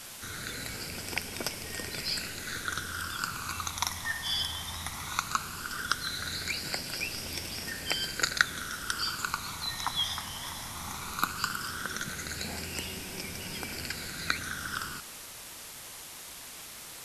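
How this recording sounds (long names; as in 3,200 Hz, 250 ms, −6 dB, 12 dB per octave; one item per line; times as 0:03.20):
phaser sweep stages 12, 0.17 Hz, lowest notch 450–1,300 Hz
a quantiser's noise floor 8 bits, dither triangular
MP2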